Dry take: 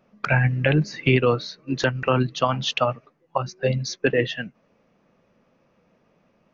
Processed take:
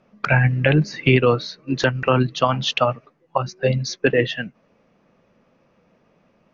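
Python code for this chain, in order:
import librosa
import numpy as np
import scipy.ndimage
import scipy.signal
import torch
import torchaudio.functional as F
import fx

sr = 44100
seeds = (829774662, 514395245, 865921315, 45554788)

y = scipy.signal.sosfilt(scipy.signal.butter(2, 7500.0, 'lowpass', fs=sr, output='sos'), x)
y = y * librosa.db_to_amplitude(3.0)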